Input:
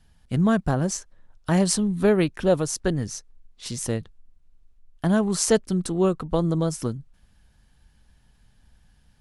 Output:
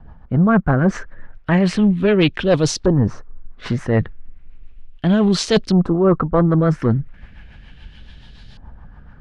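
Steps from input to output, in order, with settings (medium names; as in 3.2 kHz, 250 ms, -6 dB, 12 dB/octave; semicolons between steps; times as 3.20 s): reverse; compression 5:1, threshold -29 dBFS, peak gain reduction 14 dB; reverse; rotary cabinet horn 7 Hz; sine folder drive 7 dB, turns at -16 dBFS; LFO low-pass saw up 0.35 Hz 980–4300 Hz; trim +8 dB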